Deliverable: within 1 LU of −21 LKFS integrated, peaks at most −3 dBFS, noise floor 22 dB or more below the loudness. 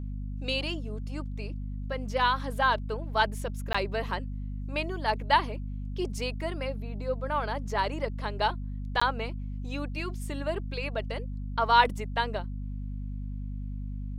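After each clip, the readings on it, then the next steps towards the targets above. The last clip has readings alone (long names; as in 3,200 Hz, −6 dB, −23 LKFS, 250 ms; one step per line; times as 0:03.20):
number of dropouts 2; longest dropout 15 ms; mains hum 50 Hz; hum harmonics up to 250 Hz; level of the hum −32 dBFS; integrated loudness −31.0 LKFS; sample peak −8.5 dBFS; target loudness −21.0 LKFS
→ repair the gap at 0:03.73/0:09.00, 15 ms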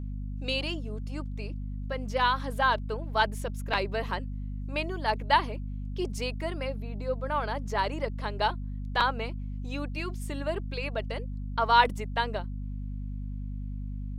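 number of dropouts 0; mains hum 50 Hz; hum harmonics up to 250 Hz; level of the hum −32 dBFS
→ hum removal 50 Hz, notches 5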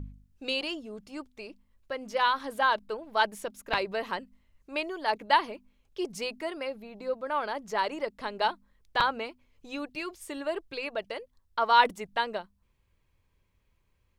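mains hum none found; integrated loudness −30.5 LKFS; sample peak −8.5 dBFS; target loudness −21.0 LKFS
→ level +9.5 dB
brickwall limiter −3 dBFS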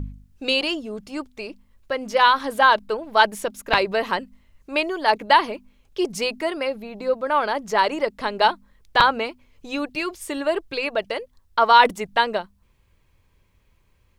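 integrated loudness −21.5 LKFS; sample peak −3.0 dBFS; background noise floor −62 dBFS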